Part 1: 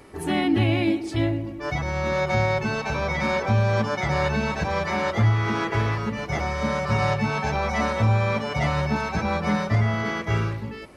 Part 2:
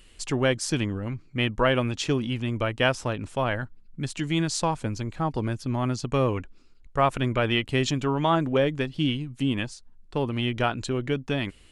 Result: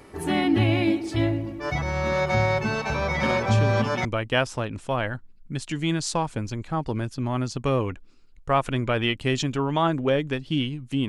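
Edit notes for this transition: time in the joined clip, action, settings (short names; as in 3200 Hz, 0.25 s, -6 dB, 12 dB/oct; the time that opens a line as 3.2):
part 1
3.23 add part 2 from 1.71 s 0.82 s -6 dB
4.05 switch to part 2 from 2.53 s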